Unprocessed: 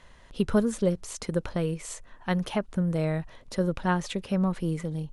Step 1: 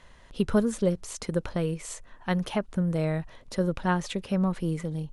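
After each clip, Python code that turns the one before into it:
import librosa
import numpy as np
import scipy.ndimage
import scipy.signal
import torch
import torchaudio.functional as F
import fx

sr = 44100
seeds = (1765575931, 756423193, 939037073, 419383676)

y = x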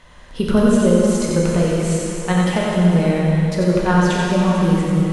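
y = x + 10.0 ** (-4.0 / 20.0) * np.pad(x, (int(90 * sr / 1000.0), 0))[:len(x)]
y = fx.rev_plate(y, sr, seeds[0], rt60_s=3.3, hf_ratio=0.9, predelay_ms=0, drr_db=-3.5)
y = y * 10.0 ** (5.5 / 20.0)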